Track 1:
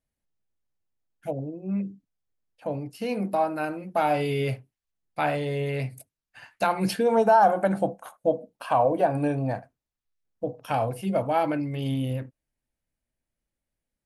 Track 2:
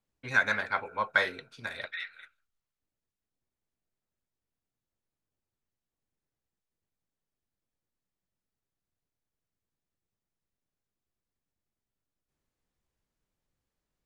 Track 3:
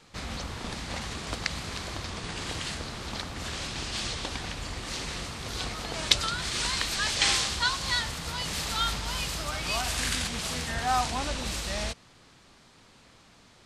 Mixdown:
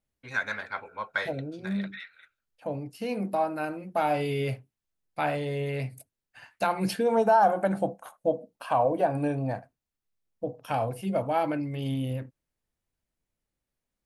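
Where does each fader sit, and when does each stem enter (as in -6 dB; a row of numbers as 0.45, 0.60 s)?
-2.5 dB, -4.5 dB, off; 0.00 s, 0.00 s, off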